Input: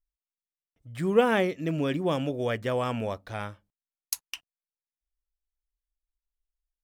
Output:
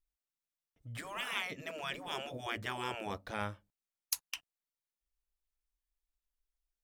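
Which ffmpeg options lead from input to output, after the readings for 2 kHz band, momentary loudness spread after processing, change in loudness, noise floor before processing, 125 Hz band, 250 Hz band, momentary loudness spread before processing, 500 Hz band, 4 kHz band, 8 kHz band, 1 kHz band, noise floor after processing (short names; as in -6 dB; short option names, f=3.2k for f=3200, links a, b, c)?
-5.5 dB, 9 LU, -11.5 dB, under -85 dBFS, -14.5 dB, -18.0 dB, 16 LU, -18.0 dB, -2.0 dB, -4.0 dB, -8.5 dB, under -85 dBFS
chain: -af "afftfilt=real='re*lt(hypot(re,im),0.112)':imag='im*lt(hypot(re,im),0.112)':win_size=1024:overlap=0.75,volume=-1.5dB"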